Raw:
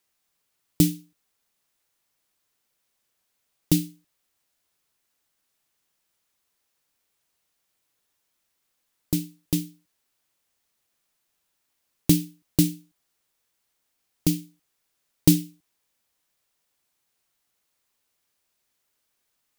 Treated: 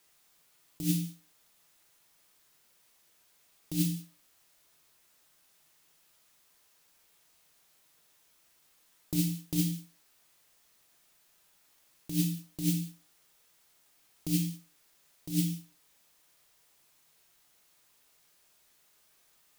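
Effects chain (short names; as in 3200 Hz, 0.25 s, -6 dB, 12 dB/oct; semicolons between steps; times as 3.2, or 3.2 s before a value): low shelf 350 Hz -2 dB; negative-ratio compressor -31 dBFS, ratio -1; non-linear reverb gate 0.21 s falling, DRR 3 dB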